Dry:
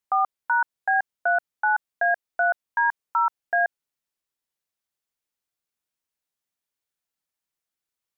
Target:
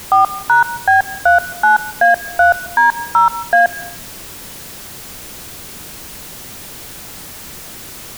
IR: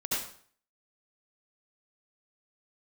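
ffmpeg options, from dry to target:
-filter_complex "[0:a]aeval=exprs='val(0)+0.5*0.0188*sgn(val(0))':c=same,lowshelf=f=420:g=11,asplit=2[s0][s1];[1:a]atrim=start_sample=2205,adelay=67[s2];[s1][s2]afir=irnorm=-1:irlink=0,volume=0.0708[s3];[s0][s3]amix=inputs=2:normalize=0,volume=2.66"

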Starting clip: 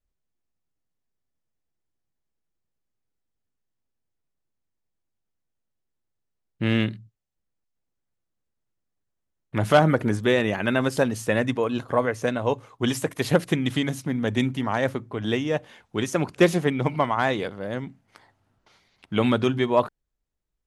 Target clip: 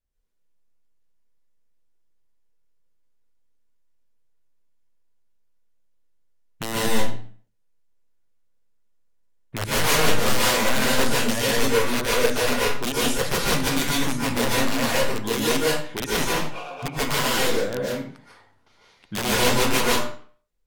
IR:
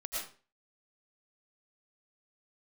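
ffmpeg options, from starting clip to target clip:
-filter_complex "[0:a]aeval=exprs='(mod(7.5*val(0)+1,2)-1)/7.5':c=same,asplit=3[s0][s1][s2];[s0]afade=t=out:st=16.34:d=0.02[s3];[s1]asplit=3[s4][s5][s6];[s4]bandpass=f=730:t=q:w=8,volume=1[s7];[s5]bandpass=f=1090:t=q:w=8,volume=0.501[s8];[s6]bandpass=f=2440:t=q:w=8,volume=0.355[s9];[s7][s8][s9]amix=inputs=3:normalize=0,afade=t=in:st=16.34:d=0.02,afade=t=out:st=16.82:d=0.02[s10];[s2]afade=t=in:st=16.82:d=0.02[s11];[s3][s10][s11]amix=inputs=3:normalize=0[s12];[1:a]atrim=start_sample=2205,asetrate=33516,aresample=44100[s13];[s12][s13]afir=irnorm=-1:irlink=0"

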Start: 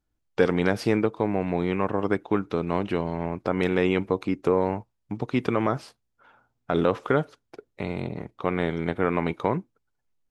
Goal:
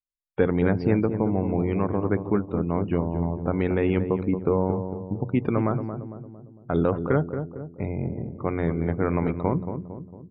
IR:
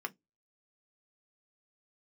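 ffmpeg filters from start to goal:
-filter_complex "[0:a]lowpass=5600,afftdn=nr=36:nf=-37,aemphasis=mode=reproduction:type=bsi,bandreject=f=60:t=h:w=6,bandreject=f=120:t=h:w=6,bandreject=f=180:t=h:w=6,asplit=2[s0][s1];[s1]adelay=227,lowpass=f=910:p=1,volume=0.422,asplit=2[s2][s3];[s3]adelay=227,lowpass=f=910:p=1,volume=0.53,asplit=2[s4][s5];[s5]adelay=227,lowpass=f=910:p=1,volume=0.53,asplit=2[s6][s7];[s7]adelay=227,lowpass=f=910:p=1,volume=0.53,asplit=2[s8][s9];[s9]adelay=227,lowpass=f=910:p=1,volume=0.53,asplit=2[s10][s11];[s11]adelay=227,lowpass=f=910:p=1,volume=0.53[s12];[s0][s2][s4][s6][s8][s10][s12]amix=inputs=7:normalize=0,volume=0.708"

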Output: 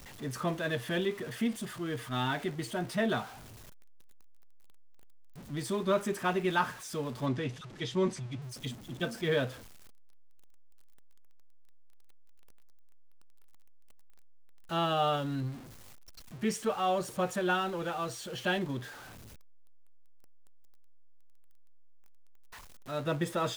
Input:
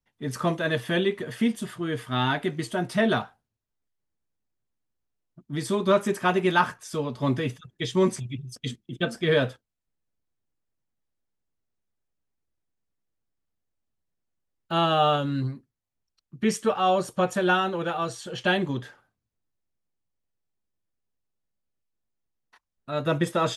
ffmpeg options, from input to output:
-filter_complex "[0:a]aeval=exprs='val(0)+0.5*0.0178*sgn(val(0))':c=same,asettb=1/sr,asplit=3[s0][s1][s2];[s0]atrim=end=7.264[s3];[s1]atrim=start=7.26:end=8.42,asetpts=PTS-STARTPTS,afade=t=in:d=0.004:c=qsin,afade=t=out:st=1.156:d=0.004:c=qsin,lowpass=6600[s4];[s2]atrim=start=8.416[s5];[s3][s4]acrossfade=d=0.004:c1=hsin:c2=qsin[s6];[s6][s5]acrossfade=d=0.004:c1=qsin:c2=hsin,volume=0.398"

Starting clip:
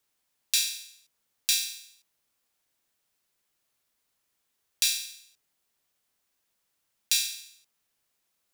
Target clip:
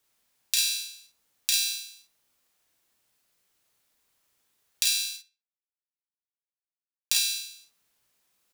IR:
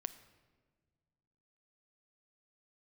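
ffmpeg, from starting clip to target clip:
-filter_complex "[0:a]asplit=3[s0][s1][s2];[s0]afade=t=out:st=5.16:d=0.02[s3];[s1]acrusher=bits=4:mix=0:aa=0.5,afade=t=in:st=5.16:d=0.02,afade=t=out:st=7.14:d=0.02[s4];[s2]afade=t=in:st=7.14:d=0.02[s5];[s3][s4][s5]amix=inputs=3:normalize=0,asplit=2[s6][s7];[s7]adelay=67,lowpass=f=4800:p=1,volume=0.141,asplit=2[s8][s9];[s9]adelay=67,lowpass=f=4800:p=1,volume=0.31,asplit=2[s10][s11];[s11]adelay=67,lowpass=f=4800:p=1,volume=0.31[s12];[s8][s10][s12]amix=inputs=3:normalize=0[s13];[s6][s13]amix=inputs=2:normalize=0,acompressor=threshold=0.0562:ratio=6,asplit=2[s14][s15];[s15]aecho=0:1:34|50:0.596|0.562[s16];[s14][s16]amix=inputs=2:normalize=0,volume=1.33"

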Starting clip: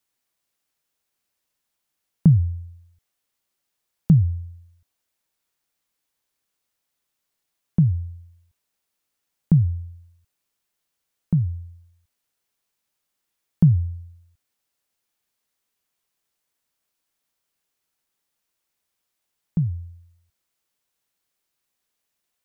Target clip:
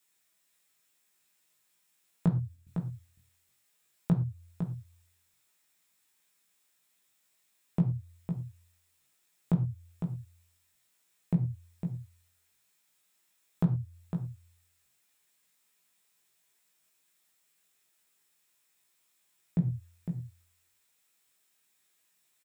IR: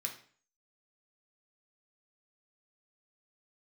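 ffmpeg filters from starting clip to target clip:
-filter_complex "[0:a]asettb=1/sr,asplit=3[s0][s1][s2];[s0]atrim=end=2.264[s3];[s1]atrim=start=2.26:end=2.67,asetpts=PTS-STARTPTS,afade=t=in:d=0.004:c=qsin,afade=t=out:st=0.406:d=0.004:c=qsin,agate=range=0.447:threshold=0.0447:ratio=16:detection=peak[s4];[s2]atrim=start=2.666[s5];[s3][s4]acrossfade=d=0.004:c1=hsin:c2=qsin[s6];[s6][s5]acrossfade=d=0.004:c1=qsin:c2=hsin,acompressor=threshold=0.0501:ratio=6,asplit=2[s7][s8];[s8]adelay=17,volume=0.562[s9];[s7][s9]amix=inputs=2:normalize=0,aecho=1:1:506:0.422,asplit=2[s10][s11];[1:a]atrim=start_sample=2205,afade=t=out:st=0.17:d=0.01,atrim=end_sample=7938[s12];[s11][s12]afir=irnorm=-1:irlink=0,volume=1.06[s13];[s10][s13]amix=inputs=2:normalize=0,volume=0.891"

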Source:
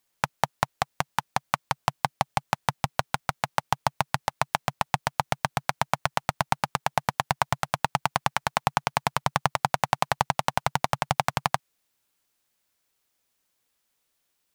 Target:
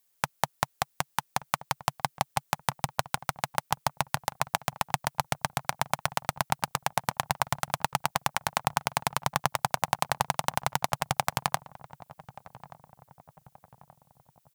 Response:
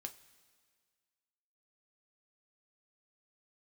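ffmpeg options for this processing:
-filter_complex "[0:a]highshelf=f=7300:g=11,asplit=2[s0][s1];[s1]adelay=1178,lowpass=f=950:p=1,volume=0.15,asplit=2[s2][s3];[s3]adelay=1178,lowpass=f=950:p=1,volume=0.54,asplit=2[s4][s5];[s5]adelay=1178,lowpass=f=950:p=1,volume=0.54,asplit=2[s6][s7];[s7]adelay=1178,lowpass=f=950:p=1,volume=0.54,asplit=2[s8][s9];[s9]adelay=1178,lowpass=f=950:p=1,volume=0.54[s10];[s2][s4][s6][s8][s10]amix=inputs=5:normalize=0[s11];[s0][s11]amix=inputs=2:normalize=0,volume=0.668"

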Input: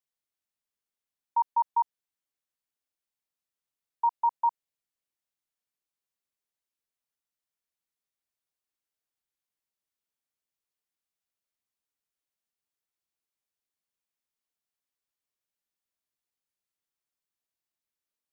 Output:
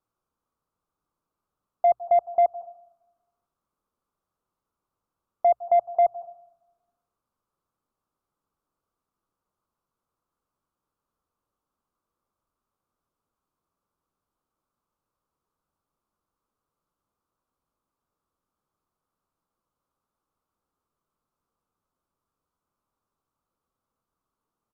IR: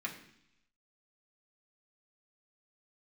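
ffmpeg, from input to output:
-filter_complex "[0:a]equalizer=f=600:w=0.34:g=-4,asplit=2[s0][s1];[1:a]atrim=start_sample=2205,adelay=116[s2];[s1][s2]afir=irnorm=-1:irlink=0,volume=0.106[s3];[s0][s3]amix=inputs=2:normalize=0,asetrate=32667,aresample=44100,bandreject=f=60:t=h:w=6,bandreject=f=120:t=h:w=6,asplit=2[s4][s5];[s5]aeval=exprs='0.0794*sin(PI/2*1.78*val(0)/0.0794)':c=same,volume=0.708[s6];[s4][s6]amix=inputs=2:normalize=0,firequalizer=gain_entry='entry(490,0);entry(700,-4);entry(1200,3);entry(1800,-22)':delay=0.05:min_phase=1,volume=2.66"

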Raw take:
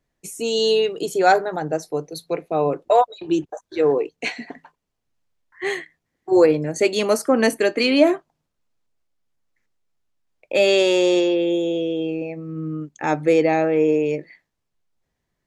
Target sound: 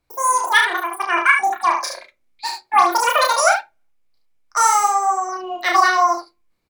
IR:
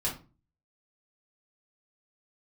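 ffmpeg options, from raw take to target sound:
-filter_complex "[0:a]equalizer=f=990:t=o:w=0.22:g=9,asetrate=101871,aresample=44100,aecho=1:1:32|73:0.708|0.501,asplit=2[s0][s1];[1:a]atrim=start_sample=2205,asetrate=74970,aresample=44100[s2];[s1][s2]afir=irnorm=-1:irlink=0,volume=0.355[s3];[s0][s3]amix=inputs=2:normalize=0,volume=0.794"

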